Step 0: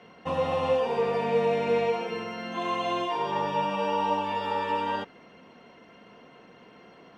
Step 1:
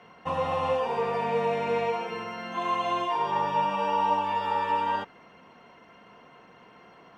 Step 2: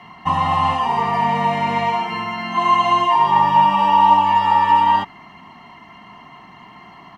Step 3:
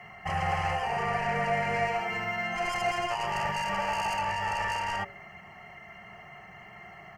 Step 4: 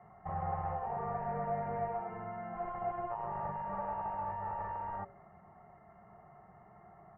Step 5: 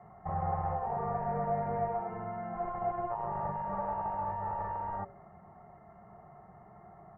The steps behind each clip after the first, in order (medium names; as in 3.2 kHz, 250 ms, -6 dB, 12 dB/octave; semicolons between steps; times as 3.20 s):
ten-band graphic EQ 250 Hz -4 dB, 500 Hz -3 dB, 1 kHz +4 dB, 4 kHz -3 dB
comb 1 ms, depth 99%; trim +7.5 dB
de-hum 56.82 Hz, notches 13; saturation -18 dBFS, distortion -9 dB; static phaser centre 1 kHz, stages 6
low-pass 1.2 kHz 24 dB/octave; trim -6.5 dB
treble shelf 2.3 kHz -11 dB; trim +4.5 dB